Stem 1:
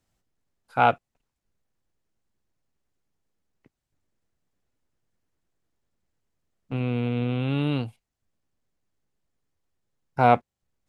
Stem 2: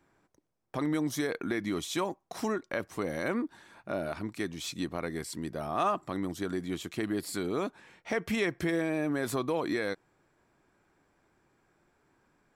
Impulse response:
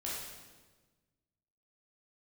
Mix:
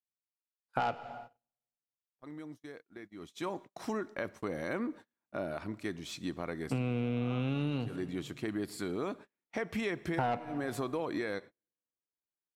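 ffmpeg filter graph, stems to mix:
-filter_complex "[0:a]highpass=100,asoftclip=type=tanh:threshold=0.168,volume=1.19,asplit=3[s0][s1][s2];[s1]volume=0.168[s3];[1:a]highshelf=f=5300:g=-6.5,adelay=1450,volume=0.668,afade=t=in:st=3.18:d=0.41:silence=0.237137,asplit=2[s4][s5];[s5]volume=0.106[s6];[s2]apad=whole_len=617762[s7];[s4][s7]sidechaincompress=threshold=0.0141:ratio=8:attack=16:release=183[s8];[2:a]atrim=start_sample=2205[s9];[s3][s6]amix=inputs=2:normalize=0[s10];[s10][s9]afir=irnorm=-1:irlink=0[s11];[s0][s8][s11]amix=inputs=3:normalize=0,agate=range=0.0158:threshold=0.00447:ratio=16:detection=peak,acompressor=threshold=0.0355:ratio=10"

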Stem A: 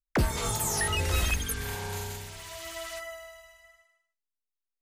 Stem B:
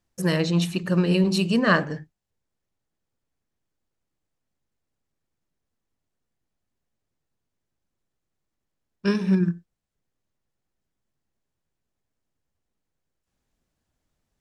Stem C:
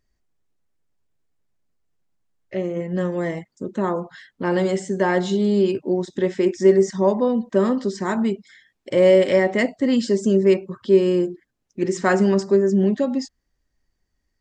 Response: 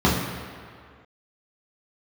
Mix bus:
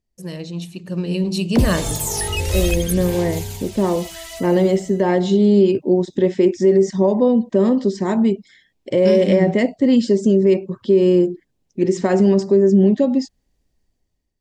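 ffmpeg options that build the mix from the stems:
-filter_complex "[0:a]aphaser=in_gain=1:out_gain=1:delay=2.4:decay=0.34:speed=0.56:type=sinusoidal,adelay=1400,volume=0.562[s0];[1:a]volume=0.398[s1];[2:a]lowpass=f=3600:p=1,alimiter=limit=0.266:level=0:latency=1:release=58,volume=0.531[s2];[s0][s1][s2]amix=inputs=3:normalize=0,equalizer=f=1400:w=1.3:g=-11,dynaudnorm=f=760:g=3:m=3.98"

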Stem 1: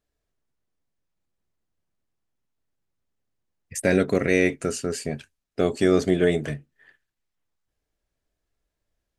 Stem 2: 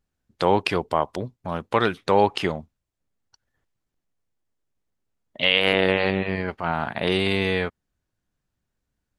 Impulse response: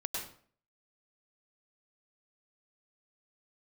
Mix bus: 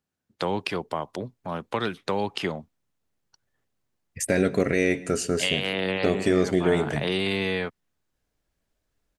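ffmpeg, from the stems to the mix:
-filter_complex "[0:a]adelay=450,volume=1.19,asplit=2[s0][s1];[s1]volume=0.1[s2];[1:a]highpass=120,acrossover=split=260|3000[s3][s4][s5];[s4]acompressor=threshold=0.0708:ratio=6[s6];[s3][s6][s5]amix=inputs=3:normalize=0,volume=0.794[s7];[2:a]atrim=start_sample=2205[s8];[s2][s8]afir=irnorm=-1:irlink=0[s9];[s0][s7][s9]amix=inputs=3:normalize=0,alimiter=limit=0.299:level=0:latency=1:release=324"

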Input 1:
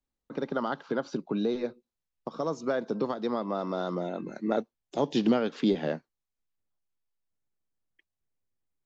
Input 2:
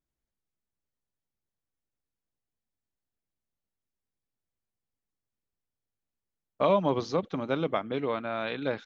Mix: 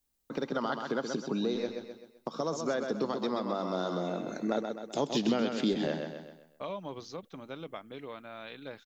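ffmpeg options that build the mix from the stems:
-filter_complex "[0:a]deesser=0.8,volume=1.33,asplit=2[s0][s1];[s1]volume=0.447[s2];[1:a]volume=0.224[s3];[s2]aecho=0:1:129|258|387|516|645:1|0.39|0.152|0.0593|0.0231[s4];[s0][s3][s4]amix=inputs=3:normalize=0,crystalizer=i=2.5:c=0,acompressor=threshold=0.0141:ratio=1.5"

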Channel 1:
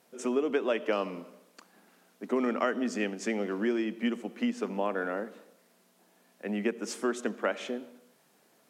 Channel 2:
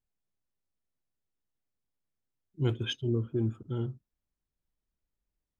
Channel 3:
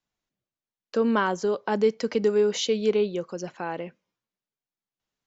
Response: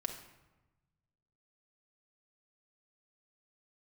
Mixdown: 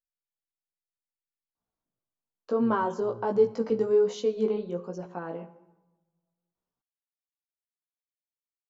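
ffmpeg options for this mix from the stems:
-filter_complex "[1:a]volume=0.158[s0];[2:a]adelay=1550,volume=0.596,asplit=2[s1][s2];[s2]volume=0.631[s3];[3:a]atrim=start_sample=2205[s4];[s3][s4]afir=irnorm=-1:irlink=0[s5];[s0][s1][s5]amix=inputs=3:normalize=0,highshelf=f=1500:t=q:w=1.5:g=-9,flanger=delay=16:depth=2.2:speed=1.2"

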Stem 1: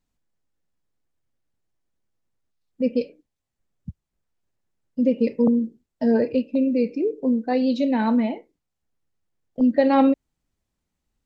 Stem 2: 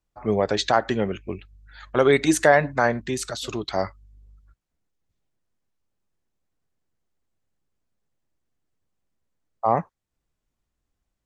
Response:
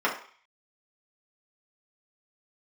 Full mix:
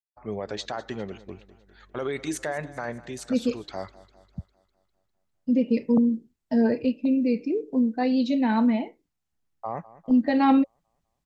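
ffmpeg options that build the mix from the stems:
-filter_complex "[0:a]equalizer=f=470:t=o:w=0.77:g=-4,bandreject=f=550:w=12,adelay=500,volume=0.944[s0];[1:a]agate=range=0.0224:threshold=0.00631:ratio=3:detection=peak,alimiter=limit=0.282:level=0:latency=1:release=13,volume=0.335,asplit=2[s1][s2];[s2]volume=0.119,aecho=0:1:201|402|603|804|1005|1206|1407|1608:1|0.55|0.303|0.166|0.0915|0.0503|0.0277|0.0152[s3];[s0][s1][s3]amix=inputs=3:normalize=0"

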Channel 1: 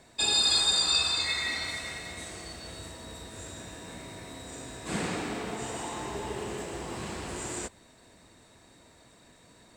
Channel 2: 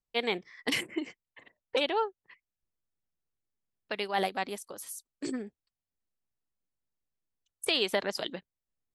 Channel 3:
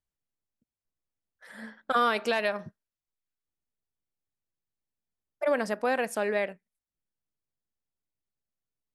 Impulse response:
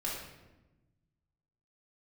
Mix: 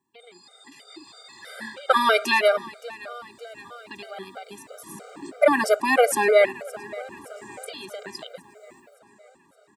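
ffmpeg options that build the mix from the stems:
-filter_complex "[0:a]highshelf=f=1600:t=q:w=1.5:g=-6.5,volume=0.141,asplit=2[s0][s1];[s1]volume=0.447[s2];[1:a]alimiter=limit=0.0841:level=0:latency=1:release=35,volume=0.316[s3];[2:a]highpass=f=270:w=0.5412,highpass=f=270:w=1.3066,highshelf=f=9800:g=8,volume=1.33,asplit=2[s4][s5];[s5]volume=0.1[s6];[s0][s3]amix=inputs=2:normalize=0,acompressor=threshold=0.00631:ratio=5,volume=1[s7];[s2][s6]amix=inputs=2:normalize=0,aecho=0:1:568|1136|1704|2272|2840|3408|3976|4544:1|0.54|0.292|0.157|0.085|0.0459|0.0248|0.0134[s8];[s4][s7][s8]amix=inputs=3:normalize=0,dynaudnorm=f=330:g=7:m=5.01,highpass=180,afftfilt=real='re*gt(sin(2*PI*3.1*pts/sr)*(1-2*mod(floor(b*sr/1024/400),2)),0)':imag='im*gt(sin(2*PI*3.1*pts/sr)*(1-2*mod(floor(b*sr/1024/400),2)),0)':win_size=1024:overlap=0.75"

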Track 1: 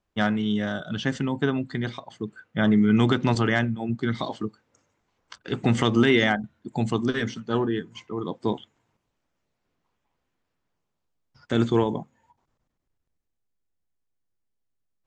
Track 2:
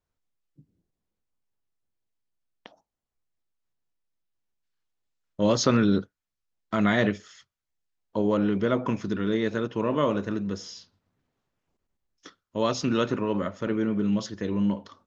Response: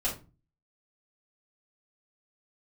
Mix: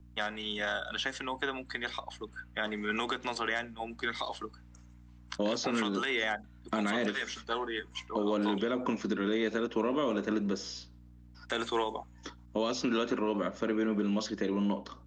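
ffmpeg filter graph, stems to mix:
-filter_complex "[0:a]highpass=730,volume=1.33[s0];[1:a]lowshelf=f=170:t=q:w=1.5:g=-10.5,alimiter=limit=0.211:level=0:latency=1,aeval=exprs='val(0)+0.002*(sin(2*PI*60*n/s)+sin(2*PI*2*60*n/s)/2+sin(2*PI*3*60*n/s)/3+sin(2*PI*4*60*n/s)/4+sin(2*PI*5*60*n/s)/5)':c=same,volume=1.26[s1];[s0][s1]amix=inputs=2:normalize=0,acrossover=split=110|510|2200|5200[s2][s3][s4][s5][s6];[s2]acompressor=threshold=0.00178:ratio=4[s7];[s3]acompressor=threshold=0.0355:ratio=4[s8];[s4]acompressor=threshold=0.0282:ratio=4[s9];[s5]acompressor=threshold=0.0158:ratio=4[s10];[s6]acompressor=threshold=0.00501:ratio=4[s11];[s7][s8][s9][s10][s11]amix=inputs=5:normalize=0,alimiter=limit=0.1:level=0:latency=1:release=324"

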